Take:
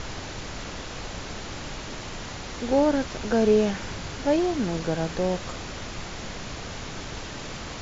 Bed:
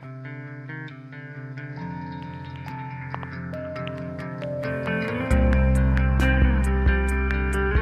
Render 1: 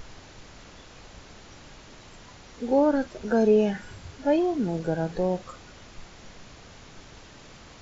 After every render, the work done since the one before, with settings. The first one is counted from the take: noise print and reduce 12 dB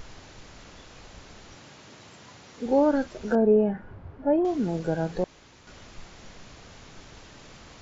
1.55–2.66 HPF 90 Hz 24 dB/oct; 3.35–4.45 LPF 1100 Hz; 5.24–5.67 room tone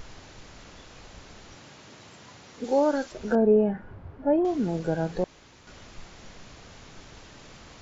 2.64–3.12 tone controls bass -11 dB, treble +8 dB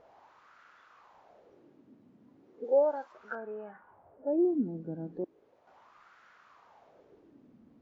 wah 0.36 Hz 240–1400 Hz, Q 3.9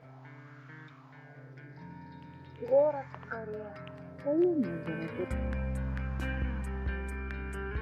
add bed -14.5 dB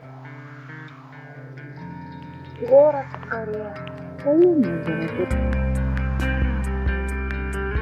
gain +11.5 dB

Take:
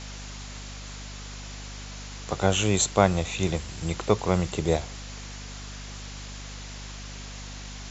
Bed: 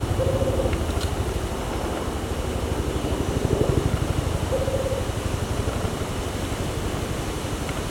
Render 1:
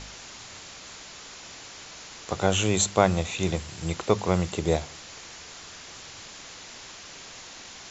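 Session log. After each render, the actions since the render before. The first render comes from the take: de-hum 50 Hz, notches 5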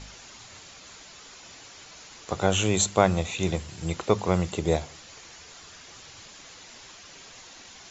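denoiser 6 dB, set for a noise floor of -44 dBFS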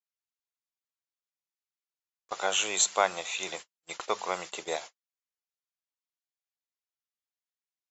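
HPF 800 Hz 12 dB/oct; gate -40 dBFS, range -55 dB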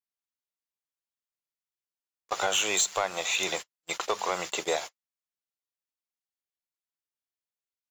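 compressor 6:1, threshold -28 dBFS, peak gain reduction 10 dB; sample leveller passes 2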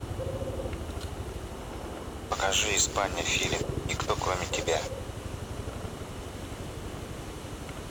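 add bed -11.5 dB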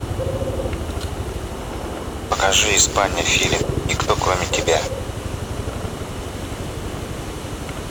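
gain +10.5 dB

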